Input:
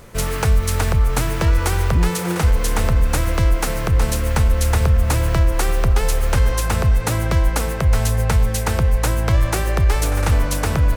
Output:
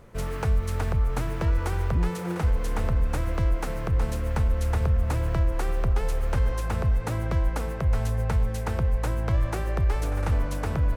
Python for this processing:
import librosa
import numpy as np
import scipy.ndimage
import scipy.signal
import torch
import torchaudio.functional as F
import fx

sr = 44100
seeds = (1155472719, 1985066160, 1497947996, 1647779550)

y = fx.high_shelf(x, sr, hz=2600.0, db=-11.0)
y = y * librosa.db_to_amplitude(-7.5)